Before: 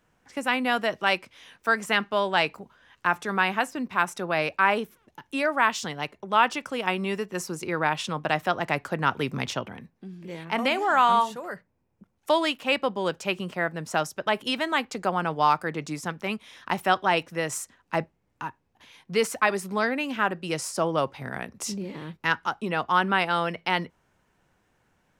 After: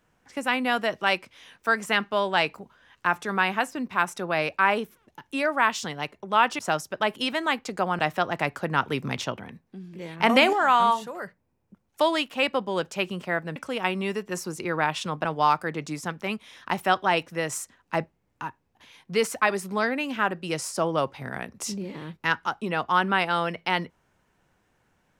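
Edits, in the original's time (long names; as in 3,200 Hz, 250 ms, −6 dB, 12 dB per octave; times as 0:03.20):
0:06.59–0:08.28: swap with 0:13.85–0:15.25
0:10.49–0:10.82: clip gain +6.5 dB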